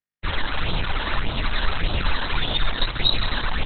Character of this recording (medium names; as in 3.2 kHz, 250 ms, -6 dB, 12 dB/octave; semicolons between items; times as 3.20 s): phasing stages 12, 1.7 Hz, lowest notch 120–2000 Hz; a quantiser's noise floor 6-bit, dither none; Opus